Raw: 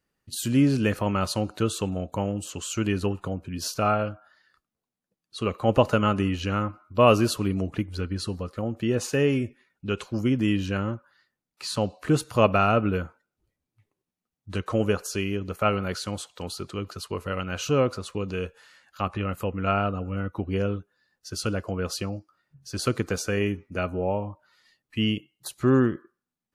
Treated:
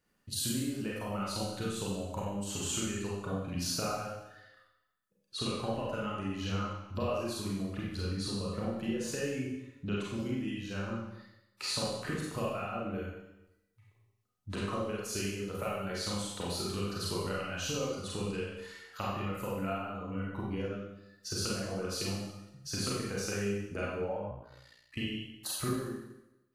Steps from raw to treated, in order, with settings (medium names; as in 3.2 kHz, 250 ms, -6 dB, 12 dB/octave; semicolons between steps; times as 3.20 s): compression 16:1, threshold -35 dBFS, peak gain reduction 23.5 dB; reverb removal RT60 1.3 s; Schroeder reverb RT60 0.92 s, combs from 31 ms, DRR -5.5 dB; 24.30–24.98 s: ring modulator 30 Hz; flange 0.2 Hz, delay 6.7 ms, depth 5.5 ms, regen +89%; trim +4 dB